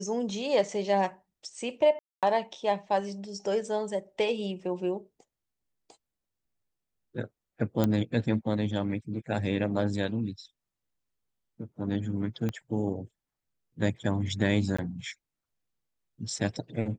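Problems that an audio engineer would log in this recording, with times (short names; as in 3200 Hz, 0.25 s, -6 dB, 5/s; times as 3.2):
1.99–2.23 gap 0.237 s
7.84 pop -13 dBFS
12.49 pop -19 dBFS
14.77–14.79 gap 15 ms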